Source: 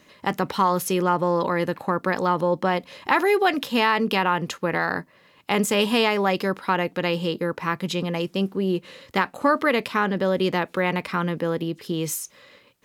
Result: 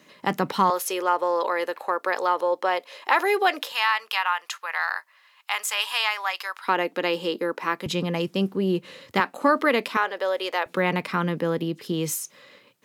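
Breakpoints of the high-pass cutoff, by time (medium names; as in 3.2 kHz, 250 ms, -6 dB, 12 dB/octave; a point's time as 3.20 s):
high-pass 24 dB/octave
130 Hz
from 0.70 s 420 Hz
from 3.72 s 920 Hz
from 6.68 s 250 Hz
from 7.86 s 93 Hz
from 9.20 s 210 Hz
from 9.97 s 490 Hz
from 10.66 s 120 Hz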